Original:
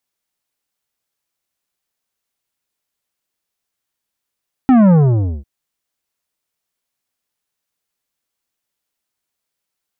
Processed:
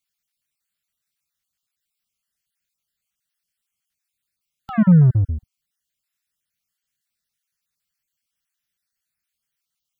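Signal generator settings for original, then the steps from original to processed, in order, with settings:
sub drop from 270 Hz, over 0.75 s, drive 11 dB, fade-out 0.53 s, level -7.5 dB
random spectral dropouts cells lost 34%; band shelf 540 Hz -12.5 dB 2.3 oct

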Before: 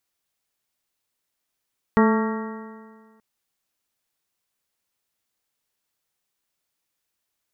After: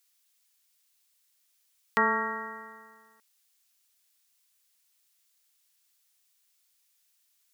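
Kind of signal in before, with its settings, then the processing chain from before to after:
stretched partials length 1.23 s, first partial 218 Hz, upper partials -4/-14/-8/-9/-12.5/-20/-12.5 dB, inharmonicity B 0.0026, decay 1.70 s, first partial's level -14 dB
HPF 1400 Hz 6 dB/oct; high shelf 2200 Hz +10 dB

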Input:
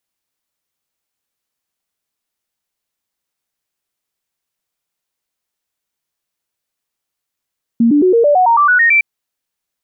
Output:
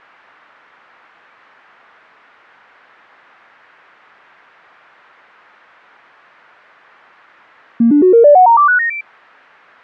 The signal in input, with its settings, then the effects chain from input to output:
stepped sine 232 Hz up, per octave 3, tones 11, 0.11 s, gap 0.00 s -7 dBFS
switching spikes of -14 dBFS; LPF 1600 Hz 24 dB/oct; dynamic EQ 600 Hz, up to +5 dB, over -27 dBFS, Q 1.1

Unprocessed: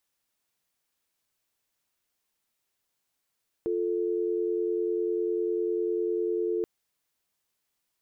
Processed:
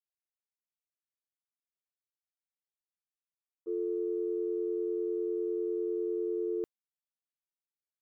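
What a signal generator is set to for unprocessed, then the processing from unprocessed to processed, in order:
call progress tone dial tone, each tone -28 dBFS 2.98 s
expander -23 dBFS

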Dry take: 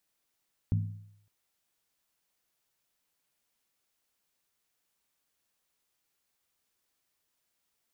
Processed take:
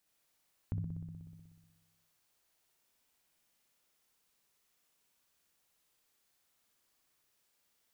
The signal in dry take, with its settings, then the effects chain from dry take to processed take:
skin hit length 0.56 s, lowest mode 103 Hz, decay 0.72 s, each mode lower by 6.5 dB, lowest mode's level -22.5 dB
on a send: flutter echo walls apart 10.5 m, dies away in 1.3 s; on the sum: compressor 1.5:1, threshold -49 dBFS

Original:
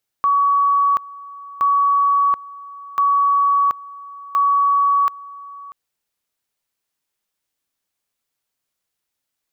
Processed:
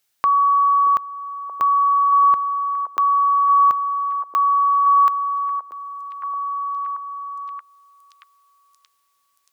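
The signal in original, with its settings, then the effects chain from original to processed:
two-level tone 1130 Hz -12.5 dBFS, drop 20.5 dB, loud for 0.73 s, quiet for 0.64 s, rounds 4
on a send: delay with a stepping band-pass 0.628 s, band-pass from 390 Hz, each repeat 0.7 oct, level -3.5 dB; on the sum: mismatched tape noise reduction encoder only

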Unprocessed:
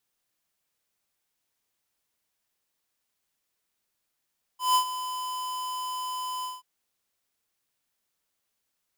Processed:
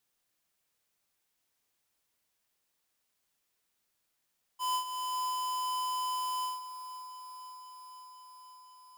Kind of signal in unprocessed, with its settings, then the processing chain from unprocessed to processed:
ADSR square 1010 Hz, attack 0.163 s, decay 87 ms, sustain -13 dB, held 1.85 s, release 0.182 s -20 dBFS
compressor 3:1, threshold -35 dBFS; on a send: thinning echo 0.517 s, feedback 74%, high-pass 320 Hz, level -13 dB

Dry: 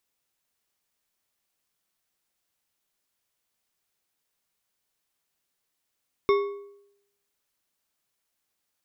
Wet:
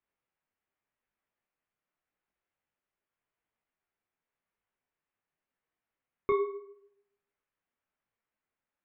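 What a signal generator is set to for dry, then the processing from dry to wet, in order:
metal hit bar, lowest mode 403 Hz, decay 0.79 s, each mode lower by 6.5 dB, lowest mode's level -16 dB
LPF 2400 Hz 24 dB/oct; detuned doubles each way 30 cents

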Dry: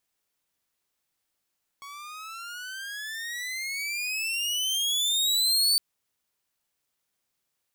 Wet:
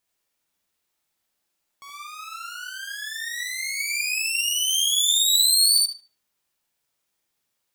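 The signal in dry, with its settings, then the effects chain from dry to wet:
gliding synth tone saw, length 3.96 s, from 1110 Hz, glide +24.5 st, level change +21.5 dB, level -16 dB
dynamic EQ 9100 Hz, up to +6 dB, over -40 dBFS, Q 0.73; on a send: tape echo 75 ms, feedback 30%, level -6 dB, low-pass 4300 Hz; on the sum: non-linear reverb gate 90 ms rising, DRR 2 dB

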